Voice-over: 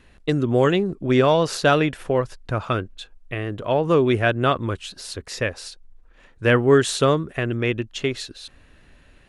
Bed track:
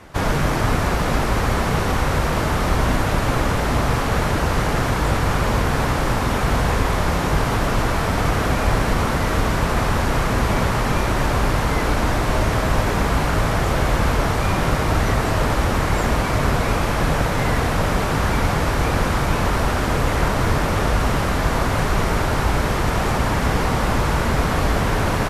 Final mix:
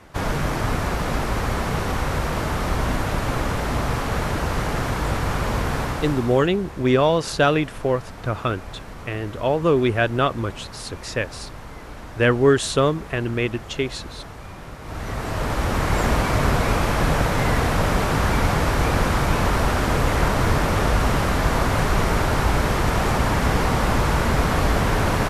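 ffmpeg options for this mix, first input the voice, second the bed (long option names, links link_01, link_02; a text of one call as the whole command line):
ffmpeg -i stem1.wav -i stem2.wav -filter_complex "[0:a]adelay=5750,volume=-0.5dB[link_01];[1:a]volume=14dB,afade=type=out:start_time=5.74:duration=0.75:silence=0.188365,afade=type=in:start_time=14.8:duration=1.24:silence=0.125893[link_02];[link_01][link_02]amix=inputs=2:normalize=0" out.wav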